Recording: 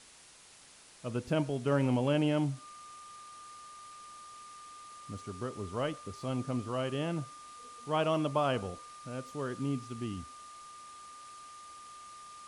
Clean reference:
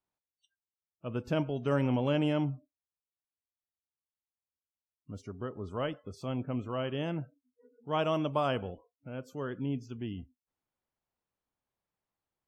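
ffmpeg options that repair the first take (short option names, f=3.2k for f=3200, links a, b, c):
-af "bandreject=f=1.2k:w=30,afwtdn=0.002"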